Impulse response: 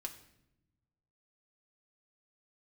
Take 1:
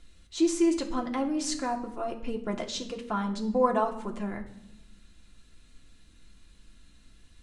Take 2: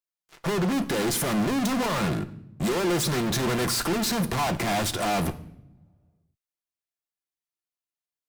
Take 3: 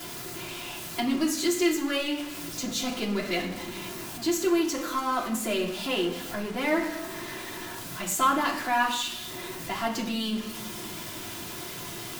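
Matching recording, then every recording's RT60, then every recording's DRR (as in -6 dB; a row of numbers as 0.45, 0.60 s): 1; 0.85 s, not exponential, 0.80 s; 1.5, 8.0, -8.0 dB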